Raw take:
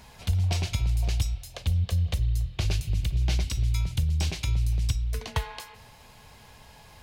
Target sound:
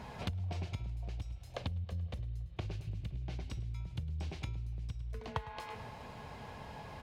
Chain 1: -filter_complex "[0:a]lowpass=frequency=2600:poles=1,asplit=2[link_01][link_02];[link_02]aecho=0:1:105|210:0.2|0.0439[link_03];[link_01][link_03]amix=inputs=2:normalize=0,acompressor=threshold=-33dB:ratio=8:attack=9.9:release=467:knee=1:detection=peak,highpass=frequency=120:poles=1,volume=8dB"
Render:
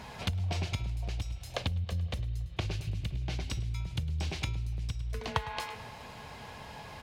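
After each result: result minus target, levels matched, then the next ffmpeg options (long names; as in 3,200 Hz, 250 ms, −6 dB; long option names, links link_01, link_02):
downward compressor: peak gain reduction −5.5 dB; 2,000 Hz band +3.0 dB
-filter_complex "[0:a]lowpass=frequency=2600:poles=1,asplit=2[link_01][link_02];[link_02]aecho=0:1:105|210:0.2|0.0439[link_03];[link_01][link_03]amix=inputs=2:normalize=0,acompressor=threshold=-39.5dB:ratio=8:attack=9.9:release=467:knee=1:detection=peak,highpass=frequency=120:poles=1,volume=8dB"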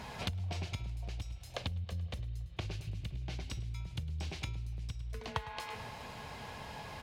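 2,000 Hz band +4.0 dB
-filter_complex "[0:a]lowpass=frequency=980:poles=1,asplit=2[link_01][link_02];[link_02]aecho=0:1:105|210:0.2|0.0439[link_03];[link_01][link_03]amix=inputs=2:normalize=0,acompressor=threshold=-39.5dB:ratio=8:attack=9.9:release=467:knee=1:detection=peak,highpass=frequency=120:poles=1,volume=8dB"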